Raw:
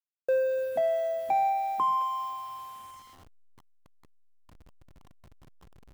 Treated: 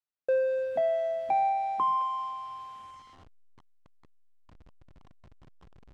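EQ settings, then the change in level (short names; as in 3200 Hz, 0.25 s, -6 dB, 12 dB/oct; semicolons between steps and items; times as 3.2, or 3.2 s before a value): air absorption 100 m; 0.0 dB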